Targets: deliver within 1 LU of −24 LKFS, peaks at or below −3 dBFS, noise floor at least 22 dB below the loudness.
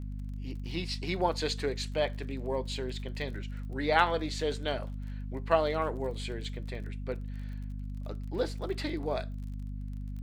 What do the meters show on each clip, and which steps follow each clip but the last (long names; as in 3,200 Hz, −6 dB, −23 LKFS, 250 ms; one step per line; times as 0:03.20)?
crackle rate 35 per second; mains hum 50 Hz; hum harmonics up to 250 Hz; level of the hum −35 dBFS; integrated loudness −33.5 LKFS; sample peak −8.5 dBFS; target loudness −24.0 LKFS
→ click removal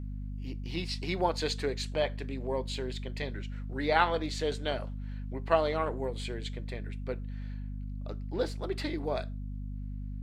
crackle rate 0 per second; mains hum 50 Hz; hum harmonics up to 250 Hz; level of the hum −35 dBFS
→ mains-hum notches 50/100/150/200/250 Hz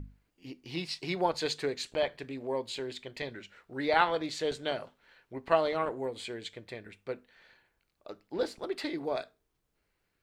mains hum none found; integrated loudness −33.5 LKFS; sample peak −9.5 dBFS; target loudness −24.0 LKFS
→ level +9.5 dB
brickwall limiter −3 dBFS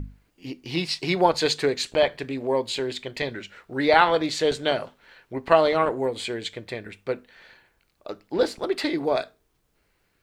integrated loudness −24.5 LKFS; sample peak −3.0 dBFS; background noise floor −70 dBFS